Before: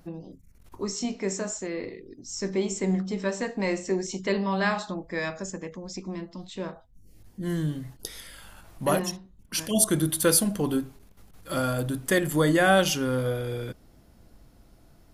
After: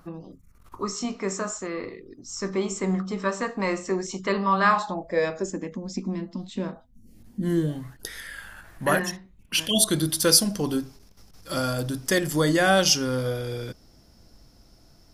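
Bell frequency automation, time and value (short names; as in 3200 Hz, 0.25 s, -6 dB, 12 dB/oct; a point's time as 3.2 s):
bell +15 dB 0.49 oct
4.69 s 1200 Hz
5.7 s 230 Hz
7.48 s 230 Hz
7.95 s 1700 Hz
9.08 s 1700 Hz
10.16 s 5300 Hz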